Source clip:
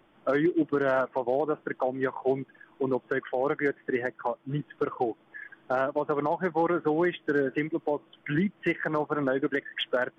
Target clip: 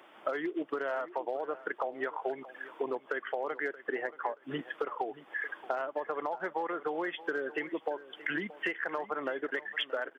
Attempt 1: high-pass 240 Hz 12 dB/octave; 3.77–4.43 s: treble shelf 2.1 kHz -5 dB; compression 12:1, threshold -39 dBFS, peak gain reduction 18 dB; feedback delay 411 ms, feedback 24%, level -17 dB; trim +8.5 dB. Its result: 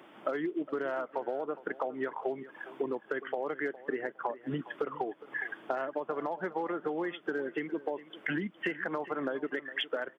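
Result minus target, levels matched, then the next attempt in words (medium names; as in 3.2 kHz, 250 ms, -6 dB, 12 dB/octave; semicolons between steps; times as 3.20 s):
echo 217 ms early; 250 Hz band +3.5 dB
high-pass 490 Hz 12 dB/octave; 3.77–4.43 s: treble shelf 2.1 kHz -5 dB; compression 12:1, threshold -39 dBFS, peak gain reduction 17 dB; feedback delay 628 ms, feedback 24%, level -17 dB; trim +8.5 dB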